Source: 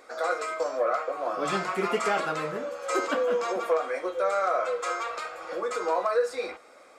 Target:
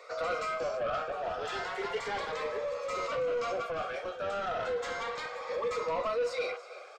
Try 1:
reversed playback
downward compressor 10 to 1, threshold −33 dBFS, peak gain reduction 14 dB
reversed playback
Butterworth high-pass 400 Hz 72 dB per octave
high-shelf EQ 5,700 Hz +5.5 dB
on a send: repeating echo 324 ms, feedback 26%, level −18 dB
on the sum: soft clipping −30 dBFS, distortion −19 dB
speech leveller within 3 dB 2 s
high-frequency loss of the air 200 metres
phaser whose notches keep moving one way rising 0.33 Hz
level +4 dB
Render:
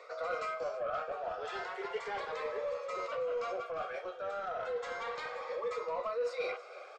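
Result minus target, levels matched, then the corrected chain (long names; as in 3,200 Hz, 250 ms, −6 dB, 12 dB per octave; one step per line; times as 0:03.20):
downward compressor: peak gain reduction +7 dB; 8,000 Hz band −5.0 dB
reversed playback
downward compressor 10 to 1, threshold −25 dBFS, peak gain reduction 7 dB
reversed playback
Butterworth high-pass 400 Hz 72 dB per octave
high-shelf EQ 5,700 Hz +15.5 dB
on a send: repeating echo 324 ms, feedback 26%, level −18 dB
on the sum: soft clipping −30 dBFS, distortion −11 dB
speech leveller within 3 dB 2 s
high-frequency loss of the air 200 metres
phaser whose notches keep moving one way rising 0.33 Hz
level +4 dB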